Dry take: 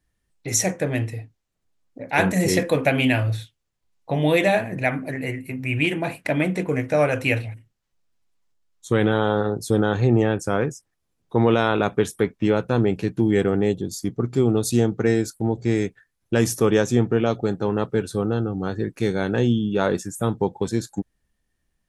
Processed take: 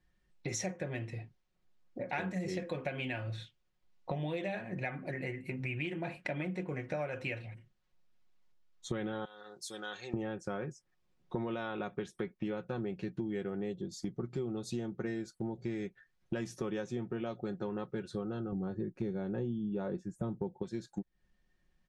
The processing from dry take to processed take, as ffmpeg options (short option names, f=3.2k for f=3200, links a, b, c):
-filter_complex "[0:a]asettb=1/sr,asplit=3[a][b][c];[a]atrim=end=9.254[d];[b]atrim=start=9.25:end=10.14,asetpts=PTS-STARTPTS,afade=t=in:d=0.004:c=qsin,afade=t=out:st=0.886:d=0.004:c=qsin,aderivative[e];[c]atrim=start=10.136[f];[d][e]acrossfade=d=0.004:c1=hsin:c2=qsin[g];[g][f]acrossfade=d=0.004:c1=qsin:c2=hsin,asettb=1/sr,asplit=3[h][i][j];[h]atrim=end=18.524[k];[i]atrim=start=18.52:end=20.63,asetpts=PTS-STARTPTS,afade=t=in:d=0.004:c=qsin,afade=t=out:st=2.106:d=0.004:c=qsin,tiltshelf=f=940:g=7.5[l];[j]atrim=start=20.626[m];[k][l]acrossfade=d=0.004:c1=hsin:c2=qsin[n];[n][m]acrossfade=d=0.004:c1=qsin:c2=hsin,lowpass=4.8k,aecho=1:1:5.5:0.53,acompressor=threshold=-34dB:ratio=6,volume=-1.5dB"